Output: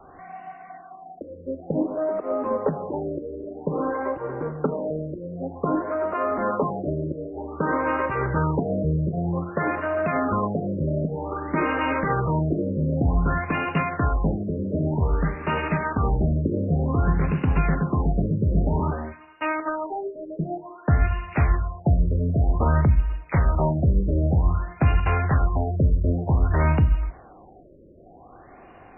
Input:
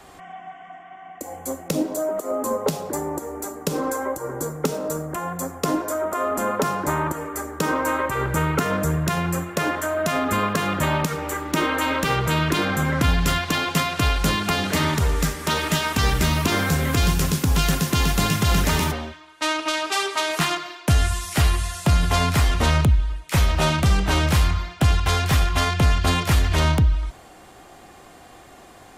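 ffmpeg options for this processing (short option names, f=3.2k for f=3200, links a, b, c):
-af "highshelf=f=2.5k:g=-6.5,bandreject=f=60:t=h:w=6,bandreject=f=120:t=h:w=6,bandreject=f=180:t=h:w=6,bandreject=f=240:t=h:w=6,bandreject=f=300:t=h:w=6,afftfilt=real='re*lt(b*sr/1024,600*pow(3000/600,0.5+0.5*sin(2*PI*0.53*pts/sr)))':imag='im*lt(b*sr/1024,600*pow(3000/600,0.5+0.5*sin(2*PI*0.53*pts/sr)))':win_size=1024:overlap=0.75"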